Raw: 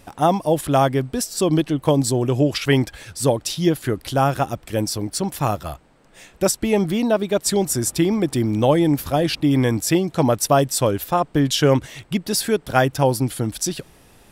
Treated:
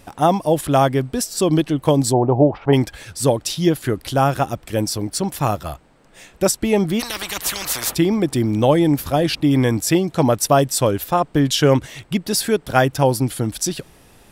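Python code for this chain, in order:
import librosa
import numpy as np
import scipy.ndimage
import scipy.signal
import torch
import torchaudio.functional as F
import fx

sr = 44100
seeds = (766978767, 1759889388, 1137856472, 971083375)

y = fx.lowpass_res(x, sr, hz=830.0, q=4.9, at=(2.12, 2.72), fade=0.02)
y = fx.spectral_comp(y, sr, ratio=10.0, at=(6.99, 7.93), fade=0.02)
y = y * 10.0 ** (1.5 / 20.0)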